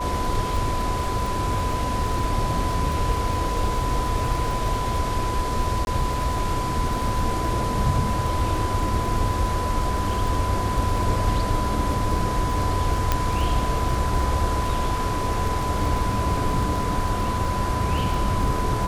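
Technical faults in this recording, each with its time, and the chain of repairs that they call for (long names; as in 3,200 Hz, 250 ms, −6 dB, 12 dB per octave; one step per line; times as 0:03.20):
surface crackle 26 per second −27 dBFS
whistle 1,000 Hz −27 dBFS
0:05.85–0:05.87: drop-out 21 ms
0:13.12: click −5 dBFS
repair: click removal
notch filter 1,000 Hz, Q 30
repair the gap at 0:05.85, 21 ms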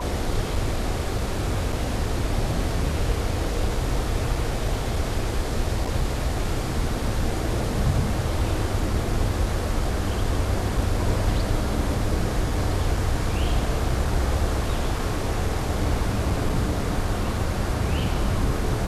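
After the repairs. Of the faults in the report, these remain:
none of them is left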